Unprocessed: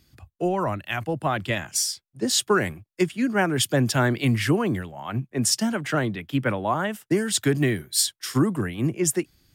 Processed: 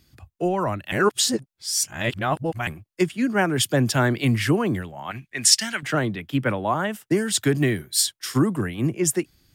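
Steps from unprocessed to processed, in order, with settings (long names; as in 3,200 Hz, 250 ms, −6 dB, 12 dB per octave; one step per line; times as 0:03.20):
0:00.92–0:02.67: reverse
0:05.11–0:05.83: octave-band graphic EQ 125/250/500/1,000/2,000/4,000/8,000 Hz −10/−8/−9/−5/+10/+6/+4 dB
level +1 dB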